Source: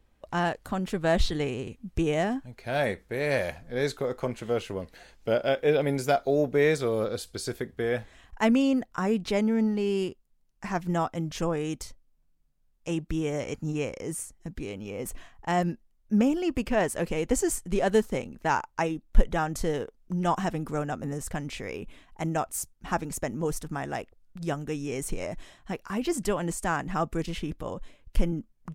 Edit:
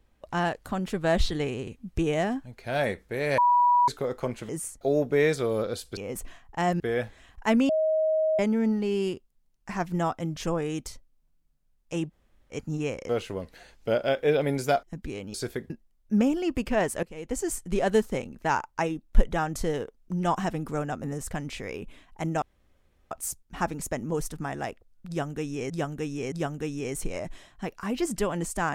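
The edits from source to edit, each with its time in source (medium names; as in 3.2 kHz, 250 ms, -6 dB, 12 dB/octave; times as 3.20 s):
3.38–3.88 s: bleep 974 Hz -17 dBFS
4.49–6.23 s: swap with 14.04–14.36 s
7.39–7.75 s: swap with 14.87–15.70 s
8.64–9.34 s: bleep 630 Hz -21 dBFS
13.06–13.48 s: room tone, crossfade 0.06 s
17.03–17.69 s: fade in linear, from -20.5 dB
22.42 s: insert room tone 0.69 s
24.39–25.01 s: loop, 3 plays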